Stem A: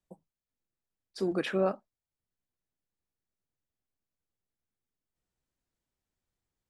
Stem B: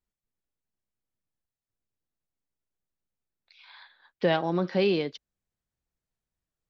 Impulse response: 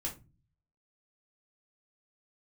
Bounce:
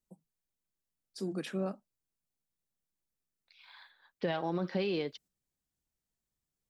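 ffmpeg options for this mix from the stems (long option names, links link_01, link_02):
-filter_complex "[0:a]highpass=frequency=150:width=0.5412,highpass=frequency=150:width=1.3066,bass=frequency=250:gain=13,treble=frequency=4000:gain=12,volume=-2.5dB[link_01];[1:a]alimiter=limit=-19dB:level=0:latency=1,aphaser=in_gain=1:out_gain=1:delay=2.7:decay=0.21:speed=1.9:type=triangular,volume=-5dB,asplit=2[link_02][link_03];[link_03]apad=whole_len=295335[link_04];[link_01][link_04]sidechaingate=range=-8dB:threshold=-59dB:ratio=16:detection=peak[link_05];[link_05][link_02]amix=inputs=2:normalize=0"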